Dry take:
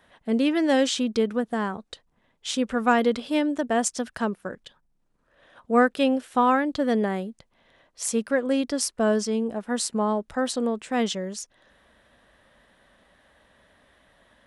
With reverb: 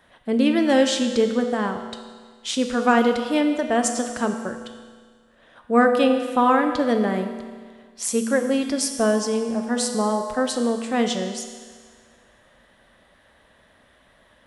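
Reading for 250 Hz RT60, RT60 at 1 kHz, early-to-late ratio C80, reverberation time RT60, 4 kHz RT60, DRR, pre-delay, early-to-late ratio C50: 1.7 s, 1.7 s, 8.0 dB, 1.7 s, 1.7 s, 5.0 dB, 8 ms, 7.0 dB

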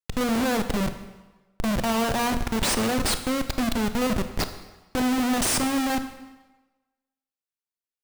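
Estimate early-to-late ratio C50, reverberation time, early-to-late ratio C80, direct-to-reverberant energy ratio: 10.0 dB, 1.2 s, 12.0 dB, 8.5 dB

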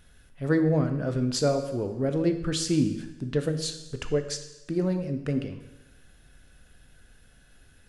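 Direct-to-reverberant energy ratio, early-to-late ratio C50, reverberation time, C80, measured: 7.0 dB, 9.5 dB, 1.0 s, 11.5 dB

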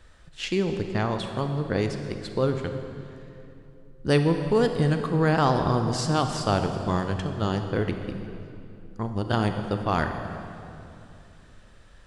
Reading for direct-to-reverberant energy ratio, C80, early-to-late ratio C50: 6.0 dB, 7.5 dB, 6.5 dB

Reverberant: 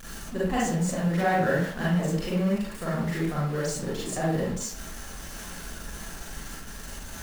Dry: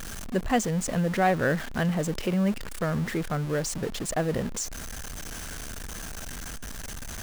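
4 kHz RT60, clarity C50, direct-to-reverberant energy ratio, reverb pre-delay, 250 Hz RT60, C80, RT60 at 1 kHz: 0.40 s, -1.0 dB, -7.5 dB, 34 ms, 0.50 s, 5.0 dB, 0.50 s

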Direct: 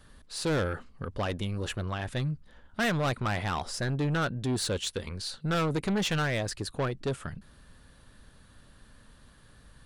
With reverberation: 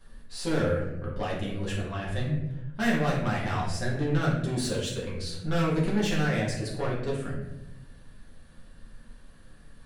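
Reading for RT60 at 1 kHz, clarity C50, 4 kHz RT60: 0.80 s, 2.5 dB, 0.55 s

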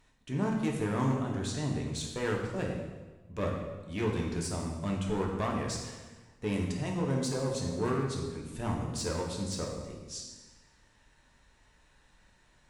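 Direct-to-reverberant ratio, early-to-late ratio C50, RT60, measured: -1.0 dB, 3.5 dB, 1.3 s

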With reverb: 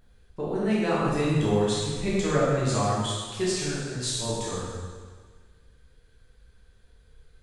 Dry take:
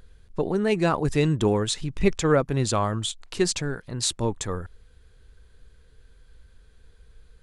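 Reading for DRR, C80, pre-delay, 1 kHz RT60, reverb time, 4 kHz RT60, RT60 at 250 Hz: -8.0 dB, 0.5 dB, 7 ms, 1.6 s, 1.6 s, 1.5 s, 1.6 s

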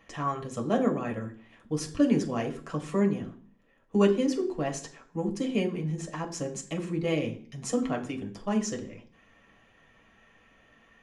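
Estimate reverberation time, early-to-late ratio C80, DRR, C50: 0.45 s, 17.0 dB, 1.0 dB, 13.0 dB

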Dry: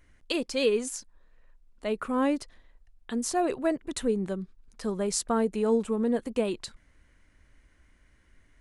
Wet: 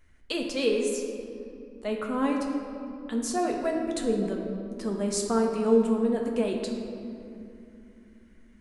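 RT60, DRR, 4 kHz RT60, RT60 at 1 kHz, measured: 2.8 s, 0.5 dB, 1.5 s, 2.6 s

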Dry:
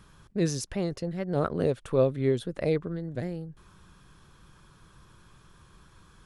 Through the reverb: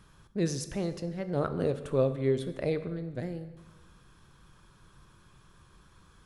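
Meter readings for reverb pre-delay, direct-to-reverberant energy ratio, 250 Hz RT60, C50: 11 ms, 10.0 dB, 1.4 s, 12.5 dB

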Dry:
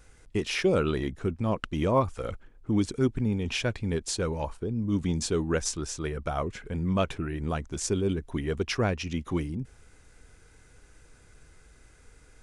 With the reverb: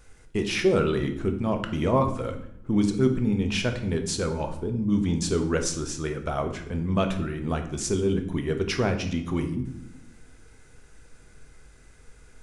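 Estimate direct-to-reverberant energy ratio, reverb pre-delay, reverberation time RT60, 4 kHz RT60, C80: 5.5 dB, 4 ms, 0.80 s, 0.55 s, 13.5 dB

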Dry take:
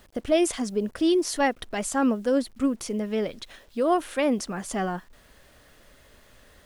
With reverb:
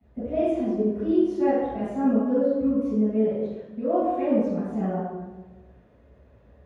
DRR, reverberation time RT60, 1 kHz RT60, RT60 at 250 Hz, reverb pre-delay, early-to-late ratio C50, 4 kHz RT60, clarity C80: -18.5 dB, 1.2 s, 1.1 s, 1.5 s, 9 ms, -4.5 dB, n/a, -1.0 dB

